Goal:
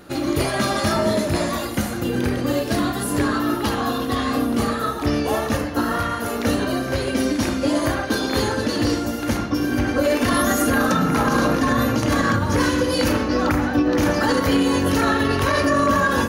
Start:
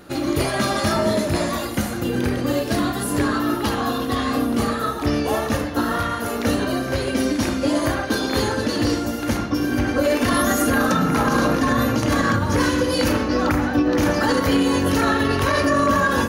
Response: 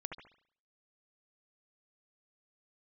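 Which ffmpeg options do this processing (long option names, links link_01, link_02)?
-filter_complex "[0:a]asettb=1/sr,asplit=3[link_01][link_02][link_03];[link_01]atrim=end=5.574[link_04];[link_02]atrim=start=5.57:end=6.21,asetpts=PTS-STARTPTS,afade=type=in:duration=0.004:curve=qsin,afade=type=out:start_time=0.636:duration=0.004:curve=qsin,bandreject=frequency=3600:width=12[link_05];[link_03]atrim=start=6.206[link_06];[link_04][link_05]acrossfade=duration=0.004:curve1=hsin:curve2=qsin[link_07];[link_07][link_06]acrossfade=duration=0.004:curve1=qsin:curve2=hsin"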